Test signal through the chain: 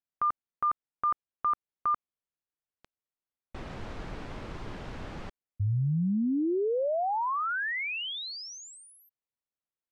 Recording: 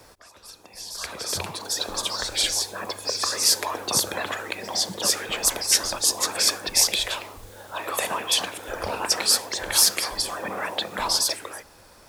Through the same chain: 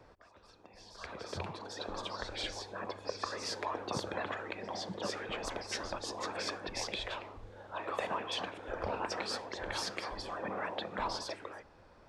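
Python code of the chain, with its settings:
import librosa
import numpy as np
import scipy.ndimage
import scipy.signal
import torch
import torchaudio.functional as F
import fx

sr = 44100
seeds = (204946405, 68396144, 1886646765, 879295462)

y = fx.spacing_loss(x, sr, db_at_10k=29)
y = F.gain(torch.from_numpy(y), -5.0).numpy()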